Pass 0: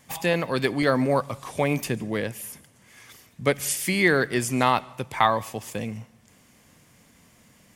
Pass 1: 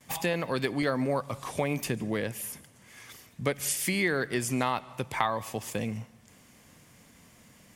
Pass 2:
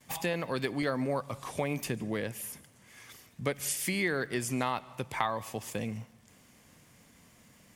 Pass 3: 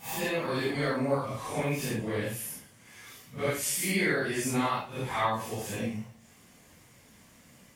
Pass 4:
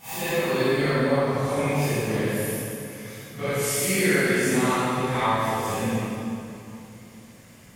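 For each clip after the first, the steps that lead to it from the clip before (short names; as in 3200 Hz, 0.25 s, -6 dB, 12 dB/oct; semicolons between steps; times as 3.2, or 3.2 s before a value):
gate with hold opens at -48 dBFS; compressor 2.5:1, threshold -27 dBFS, peak gain reduction 9 dB
crackle 89/s -50 dBFS; gain -3 dB
phase scrambler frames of 0.2 s; gain +3 dB
reverb RT60 2.9 s, pre-delay 19 ms, DRR -5 dB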